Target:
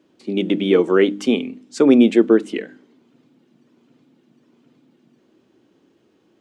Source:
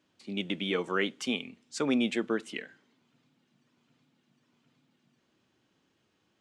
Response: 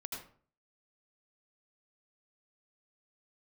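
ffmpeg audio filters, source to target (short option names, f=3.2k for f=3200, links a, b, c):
-af "equalizer=f=340:t=o:w=1.9:g=14.5,bandreject=f=50.56:t=h:w=4,bandreject=f=101.12:t=h:w=4,bandreject=f=151.68:t=h:w=4,bandreject=f=202.24:t=h:w=4,bandreject=f=252.8:t=h:w=4,bandreject=f=303.36:t=h:w=4,volume=4.5dB"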